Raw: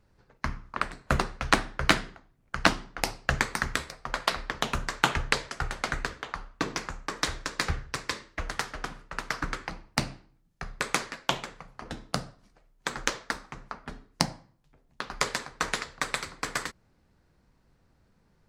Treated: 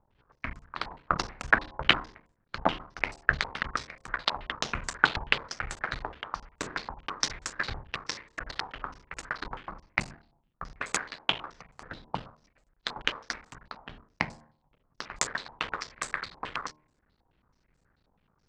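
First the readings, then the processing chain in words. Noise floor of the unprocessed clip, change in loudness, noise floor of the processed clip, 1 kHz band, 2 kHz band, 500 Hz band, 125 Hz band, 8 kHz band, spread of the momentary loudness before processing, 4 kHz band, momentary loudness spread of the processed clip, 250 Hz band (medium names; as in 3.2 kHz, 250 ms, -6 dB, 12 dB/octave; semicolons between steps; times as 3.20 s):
-66 dBFS, -1.0 dB, -73 dBFS, -2.0 dB, 0.0 dB, -4.0 dB, -7.0 dB, -3.0 dB, 14 LU, 0.0 dB, 17 LU, -6.0 dB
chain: cycle switcher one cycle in 3, muted; de-hum 76.08 Hz, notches 14; step-sequenced low-pass 9.3 Hz 890–7600 Hz; trim -4.5 dB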